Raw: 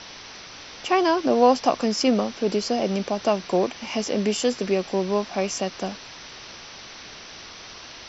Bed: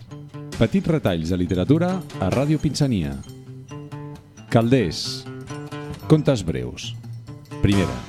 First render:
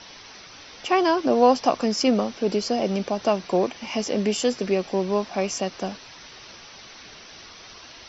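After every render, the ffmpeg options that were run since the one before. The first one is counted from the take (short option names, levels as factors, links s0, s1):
-af "afftdn=nr=6:nf=-42"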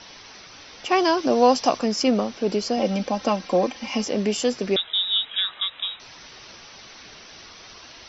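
-filter_complex "[0:a]asettb=1/sr,asplit=3[s0][s1][s2];[s0]atrim=end=0.914[s3];[s1]atrim=start=0.91:end=1.79,asetpts=PTS-STARTPTS,afade=t=in:d=0.004:c=qsin,afade=t=out:st=0.876:d=0.004:c=qsin,aemphasis=mode=production:type=50kf[s4];[s2]atrim=start=1.786[s5];[s3][s4]acrossfade=d=0.004:c1=hsin:c2=qsin[s6];[s6][s5]acrossfade=d=0.004:c1=qsin:c2=hsin,asettb=1/sr,asplit=3[s7][s8][s9];[s7]atrim=end=2.774[s10];[s8]atrim=start=2.77:end=4.05,asetpts=PTS-STARTPTS,afade=t=in:d=0.004:c=qsin,afade=t=out:st=1.276:d=0.004:c=qsin,aecho=1:1:3.8:0.65,atrim=end_sample=56448[s11];[s9]atrim=start=4.046[s12];[s10][s11]acrossfade=d=0.004:c1=hsin:c2=qsin[s13];[s13][s12]acrossfade=d=0.004:c1=qsin:c2=hsin,asettb=1/sr,asplit=3[s14][s15][s16];[s14]atrim=end=4.764[s17];[s15]atrim=start=4.76:end=6,asetpts=PTS-STARTPTS,afade=t=in:d=0.004:c=qsin,afade=t=out:st=1.236:d=0.004:c=qsin,lowpass=f=3400:t=q:w=0.5098,lowpass=f=3400:t=q:w=0.6013,lowpass=f=3400:t=q:w=0.9,lowpass=f=3400:t=q:w=2.563,afreqshift=-4000[s18];[s16]atrim=start=5.996[s19];[s17][s18]acrossfade=d=0.004:c1=hsin:c2=qsin[s20];[s20][s19]acrossfade=d=0.004:c1=qsin:c2=hsin"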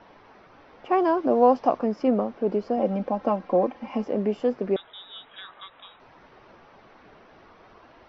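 -af "lowpass=1100,equalizer=f=64:w=0.37:g=-5.5"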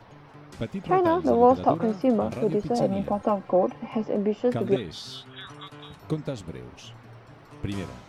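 -filter_complex "[1:a]volume=0.211[s0];[0:a][s0]amix=inputs=2:normalize=0"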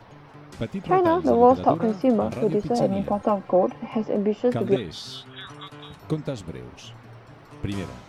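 -af "volume=1.26"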